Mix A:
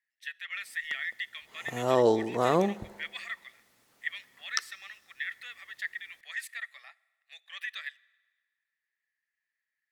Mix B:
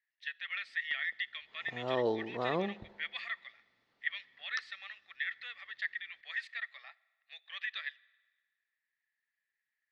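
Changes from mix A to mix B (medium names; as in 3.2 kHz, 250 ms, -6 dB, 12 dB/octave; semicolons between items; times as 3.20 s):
background -8.5 dB; master: add Chebyshev low-pass 4.3 kHz, order 3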